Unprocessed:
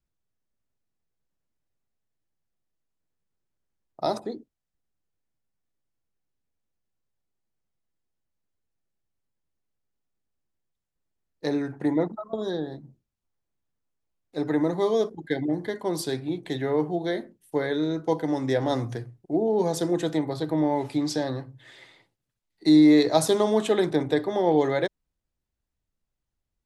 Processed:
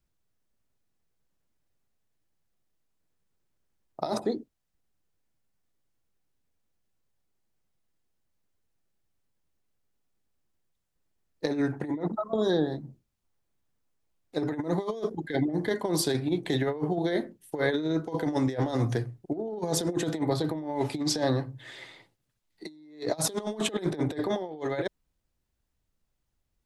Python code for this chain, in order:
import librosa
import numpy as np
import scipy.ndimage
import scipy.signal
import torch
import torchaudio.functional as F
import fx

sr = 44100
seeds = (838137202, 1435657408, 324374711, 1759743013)

y = fx.over_compress(x, sr, threshold_db=-28.0, ratio=-0.5)